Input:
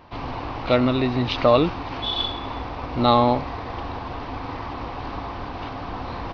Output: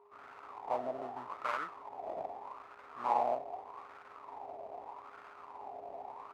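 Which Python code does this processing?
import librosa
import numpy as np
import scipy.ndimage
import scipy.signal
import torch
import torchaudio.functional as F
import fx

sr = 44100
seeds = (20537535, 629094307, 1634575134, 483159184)

y = fx.sample_hold(x, sr, seeds[0], rate_hz=1600.0, jitter_pct=20)
y = y + 10.0 ** (-34.0 / 20.0) * np.sin(2.0 * np.pi * 410.0 * np.arange(len(y)) / sr)
y = fx.wah_lfo(y, sr, hz=0.81, low_hz=660.0, high_hz=1400.0, q=6.2)
y = F.gain(torch.from_numpy(y), -5.0).numpy()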